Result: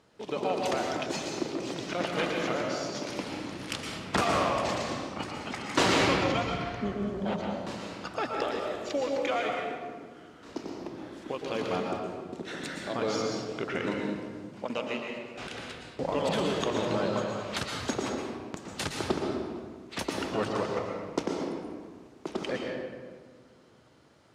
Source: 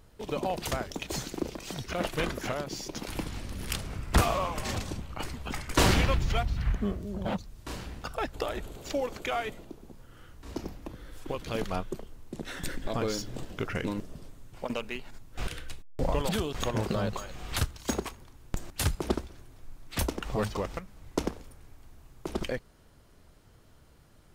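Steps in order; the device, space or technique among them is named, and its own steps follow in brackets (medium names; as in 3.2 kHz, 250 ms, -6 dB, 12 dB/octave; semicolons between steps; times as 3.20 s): supermarket ceiling speaker (band-pass 200–6400 Hz; reverberation RT60 1.6 s, pre-delay 109 ms, DRR 0 dB)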